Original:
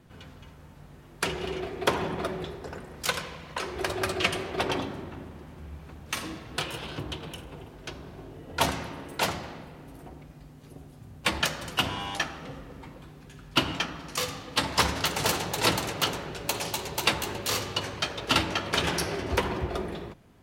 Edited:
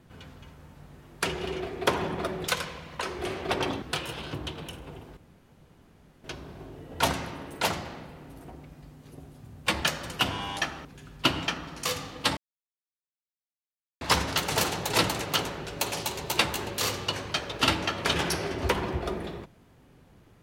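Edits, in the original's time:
2.48–3.05 cut
3.82–4.34 cut
4.91–6.47 cut
7.82 insert room tone 1.07 s
12.43–13.17 cut
14.69 insert silence 1.64 s

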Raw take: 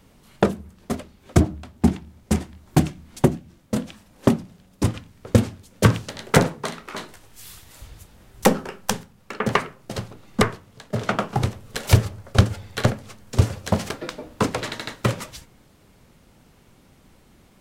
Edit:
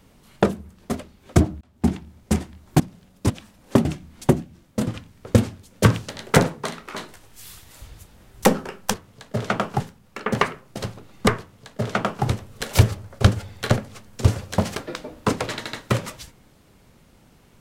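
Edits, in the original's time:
1.61–1.94 fade in
2.8–3.82 swap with 4.37–4.87
10.53–11.39 copy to 8.94

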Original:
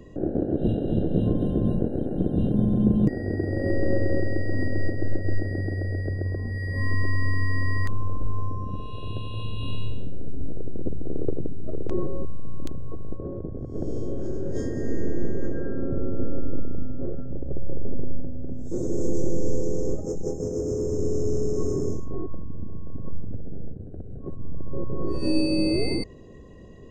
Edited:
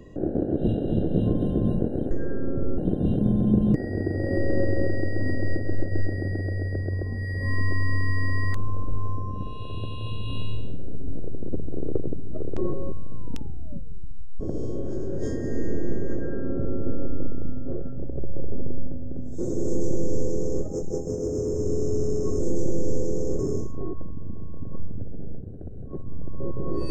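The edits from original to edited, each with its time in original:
12.47 tape stop 1.26 s
15.46–16.13 copy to 2.11
18.97–19.97 copy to 21.72

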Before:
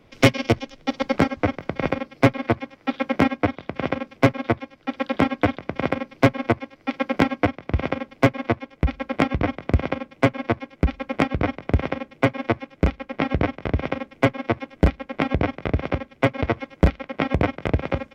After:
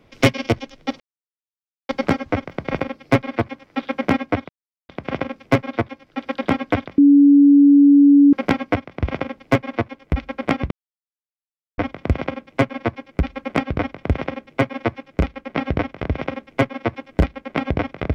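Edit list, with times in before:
1 insert silence 0.89 s
3.6 insert silence 0.40 s
5.69–7.04 bleep 284 Hz -7 dBFS
9.42 insert silence 1.07 s

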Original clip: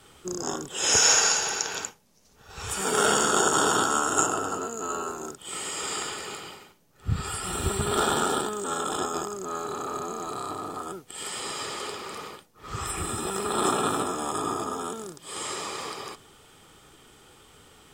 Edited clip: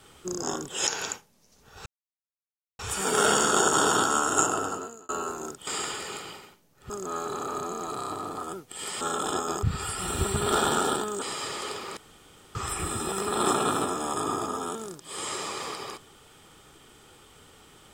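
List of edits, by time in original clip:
0.87–1.6 cut
2.59 insert silence 0.93 s
4.44–4.89 fade out
5.47–5.85 cut
7.08–8.67 swap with 9.29–11.4
12.15–12.73 room tone

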